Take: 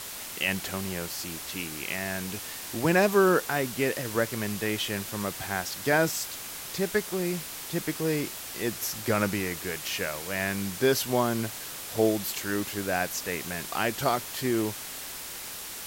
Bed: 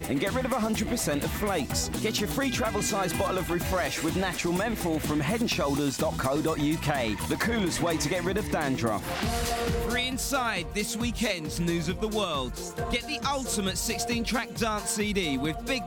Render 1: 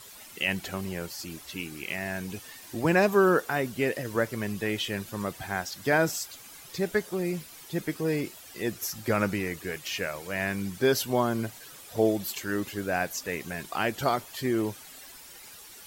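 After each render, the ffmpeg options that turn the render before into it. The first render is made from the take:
-af "afftdn=nr=12:nf=-39"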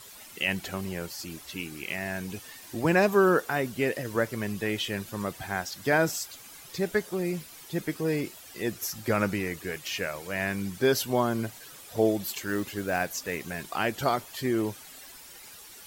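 -filter_complex "[0:a]asettb=1/sr,asplit=3[s0][s1][s2];[s0]atrim=end=12.224[s3];[s1]atrim=start=12.22:end=13.74,asetpts=PTS-STARTPTS,afade=t=in:d=0.004:c=qsin,afade=t=out:st=1.516:d=0.004:c=qsin,acrusher=bits=5:mode=log:mix=0:aa=0.000001[s4];[s2]atrim=start=13.736[s5];[s3][s4]acrossfade=d=0.004:c1=hsin:c2=qsin[s6];[s6][s5]acrossfade=d=0.004:c1=qsin:c2=hsin"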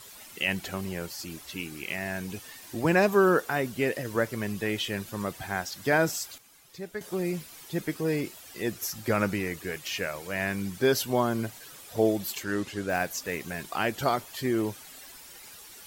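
-filter_complex "[0:a]asettb=1/sr,asplit=3[s0][s1][s2];[s0]atrim=end=12.434[s3];[s1]atrim=start=12.43:end=12.9,asetpts=PTS-STARTPTS,afade=t=in:d=0.004:c=qsin,afade=t=out:st=0.466:d=0.004:c=qsin,lowpass=8900[s4];[s2]atrim=start=12.896[s5];[s3][s4]acrossfade=d=0.004:c1=hsin:c2=qsin[s6];[s6][s5]acrossfade=d=0.004:c1=qsin:c2=hsin,asplit=3[s7][s8][s9];[s7]atrim=end=6.382[s10];[s8]atrim=start=6.378:end=7.012,asetpts=PTS-STARTPTS,volume=0.316[s11];[s9]atrim=start=7.008[s12];[s10][s11]acrossfade=d=0.004:c1=hsin:c2=hsin[s13];[s13][s12]acrossfade=d=0.004:c1=hsin:c2=hsin"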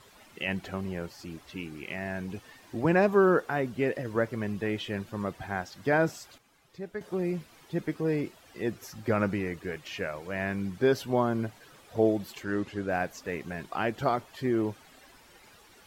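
-af "lowpass=f=1600:p=1"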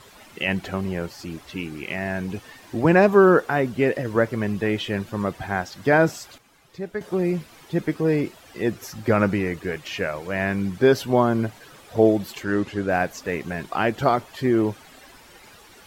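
-af "volume=2.37"

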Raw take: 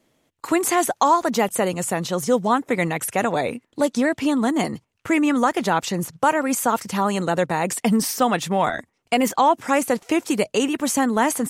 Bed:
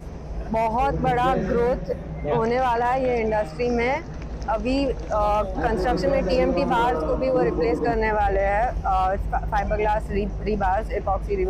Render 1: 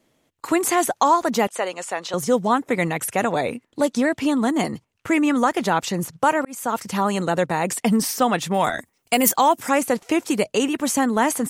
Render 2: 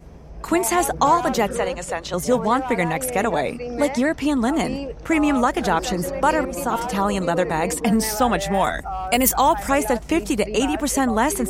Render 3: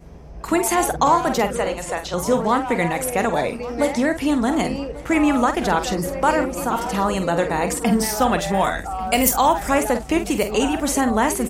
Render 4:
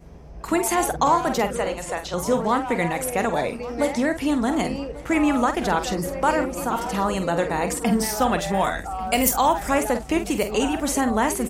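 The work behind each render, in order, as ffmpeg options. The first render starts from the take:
-filter_complex "[0:a]asettb=1/sr,asplit=3[s0][s1][s2];[s0]atrim=end=1.474[s3];[s1]atrim=start=1.47:end=2.14,asetpts=PTS-STARTPTS,afade=t=in:d=0.004:c=qsin,afade=t=out:st=0.666:d=0.004:c=qsin,highpass=550,lowpass=6300[s4];[s2]atrim=start=2.136[s5];[s3][s4]acrossfade=d=0.004:c1=hsin:c2=qsin[s6];[s6][s5]acrossfade=d=0.004:c1=qsin:c2=hsin,asettb=1/sr,asplit=3[s7][s8][s9];[s7]atrim=end=8.544[s10];[s8]atrim=start=8.54:end=9.69,asetpts=PTS-STARTPTS,afade=t=in:d=0.004:c=qsin,afade=t=out:st=1.146:d=0.004:c=qsin,aemphasis=mode=production:type=50fm[s11];[s9]atrim=start=9.686[s12];[s10][s11]acrossfade=d=0.004:c1=hsin:c2=qsin[s13];[s13][s12]acrossfade=d=0.004:c1=qsin:c2=hsin,asplit=2[s14][s15];[s14]atrim=end=6.45,asetpts=PTS-STARTPTS,afade=t=out:st=6.446:d=0.004:c=hsin[s16];[s15]atrim=start=6.45,asetpts=PTS-STARTPTS,afade=t=in:d=0.55:c=qsin[s17];[s16][s17]concat=n=2:v=0:a=1"
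-filter_complex "[1:a]volume=0.447[s0];[0:a][s0]amix=inputs=2:normalize=0"
-filter_complex "[0:a]asplit=2[s0][s1];[s1]adelay=47,volume=0.335[s2];[s0][s2]amix=inputs=2:normalize=0,aecho=1:1:1142|2284|3426|4568:0.112|0.0539|0.0259|0.0124"
-af "volume=0.75"

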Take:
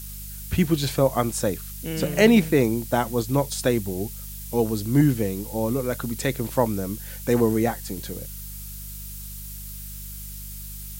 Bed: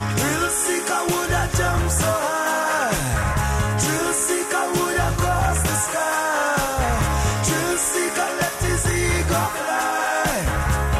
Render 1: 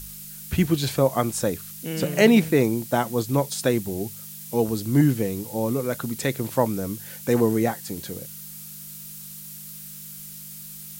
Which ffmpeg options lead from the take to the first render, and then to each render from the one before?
-af "bandreject=f=50:t=h:w=4,bandreject=f=100:t=h:w=4"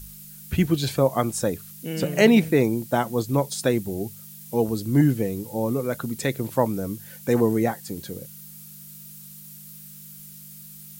-af "afftdn=nr=6:nf=-40"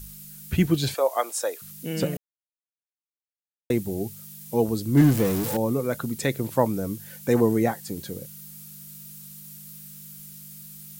-filter_complex "[0:a]asettb=1/sr,asplit=3[s0][s1][s2];[s0]atrim=end=0.944[s3];[s1]atrim=start=0.94:end=1.62,asetpts=PTS-STARTPTS,afade=t=in:d=0.004:c=qsin,afade=t=out:st=0.676:d=0.004:c=qsin,highpass=f=480:w=0.5412,highpass=f=480:w=1.3066[s4];[s2]atrim=start=1.616[s5];[s3][s4]acrossfade=d=0.004:c1=hsin:c2=qsin[s6];[s6][s5]acrossfade=d=0.004:c1=qsin:c2=hsin,asettb=1/sr,asplit=3[s7][s8][s9];[s7]atrim=end=4.974[s10];[s8]atrim=start=4.97:end=5.57,asetpts=PTS-STARTPTS,afade=t=in:d=0.004:c=qsin,afade=t=out:st=0.596:d=0.004:c=qsin,aeval=exprs='val(0)+0.5*0.0596*sgn(val(0))':c=same[s11];[s9]atrim=start=5.566[s12];[s10][s11]acrossfade=d=0.004:c1=hsin:c2=qsin[s13];[s13][s12]acrossfade=d=0.004:c1=qsin:c2=hsin,asplit=3[s14][s15][s16];[s14]atrim=end=2.17,asetpts=PTS-STARTPTS,afade=t=out:st=2.166:d=0.004:c=hsin[s17];[s15]atrim=start=2.17:end=3.7,asetpts=PTS-STARTPTS,volume=0[s18];[s16]atrim=start=3.7,asetpts=PTS-STARTPTS,afade=t=in:d=0.004:c=hsin[s19];[s17][s18][s19]concat=n=3:v=0:a=1"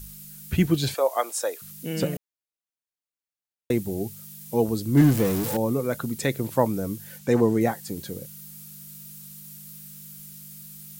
-filter_complex "[0:a]asettb=1/sr,asplit=3[s0][s1][s2];[s0]atrim=end=7.184[s3];[s1]atrim=start=7.18:end=7.61,asetpts=PTS-STARTPTS,afade=t=in:d=0.004:c=qsin,afade=t=out:st=0.426:d=0.004:c=qsin,acrossover=split=8200[s4][s5];[s5]acompressor=threshold=0.00316:ratio=4:attack=1:release=60[s6];[s4][s6]amix=inputs=2:normalize=0[s7];[s2]atrim=start=7.606[s8];[s3][s7]acrossfade=d=0.004:c1=hsin:c2=qsin[s9];[s9][s8]acrossfade=d=0.004:c1=qsin:c2=hsin"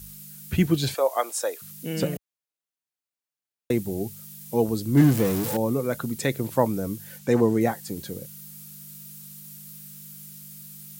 -af "highpass=59"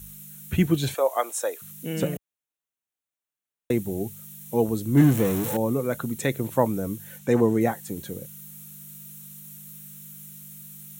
-af "equalizer=f=4800:w=5.7:g=-15"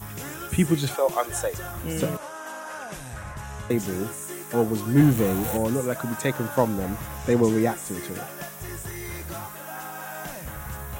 -filter_complex "[1:a]volume=0.168[s0];[0:a][s0]amix=inputs=2:normalize=0"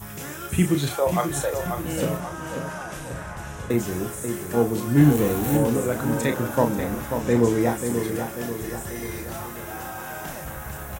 -filter_complex "[0:a]asplit=2[s0][s1];[s1]adelay=34,volume=0.447[s2];[s0][s2]amix=inputs=2:normalize=0,asplit=2[s3][s4];[s4]adelay=538,lowpass=f=2900:p=1,volume=0.447,asplit=2[s5][s6];[s6]adelay=538,lowpass=f=2900:p=1,volume=0.53,asplit=2[s7][s8];[s8]adelay=538,lowpass=f=2900:p=1,volume=0.53,asplit=2[s9][s10];[s10]adelay=538,lowpass=f=2900:p=1,volume=0.53,asplit=2[s11][s12];[s12]adelay=538,lowpass=f=2900:p=1,volume=0.53,asplit=2[s13][s14];[s14]adelay=538,lowpass=f=2900:p=1,volume=0.53[s15];[s3][s5][s7][s9][s11][s13][s15]amix=inputs=7:normalize=0"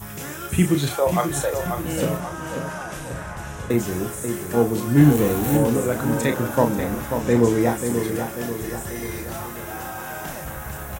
-af "volume=1.26"

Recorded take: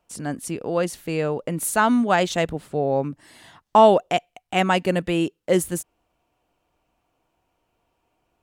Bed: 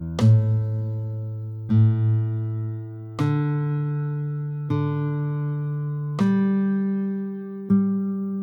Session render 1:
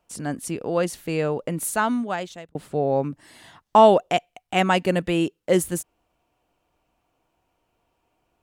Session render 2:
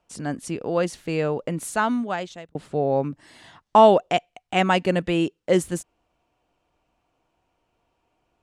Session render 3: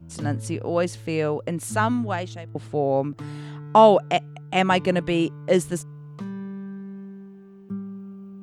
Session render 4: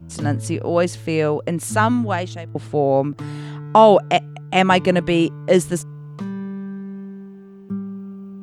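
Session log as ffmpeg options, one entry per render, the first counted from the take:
-filter_complex "[0:a]asplit=2[s0][s1];[s0]atrim=end=2.55,asetpts=PTS-STARTPTS,afade=t=out:st=1.44:d=1.11[s2];[s1]atrim=start=2.55,asetpts=PTS-STARTPTS,afade=t=in:d=0.004:c=hsin[s3];[s2][s3]concat=n=2:v=0:a=1"
-af "lowpass=7700"
-filter_complex "[1:a]volume=0.211[s0];[0:a][s0]amix=inputs=2:normalize=0"
-af "volume=1.78,alimiter=limit=0.794:level=0:latency=1"

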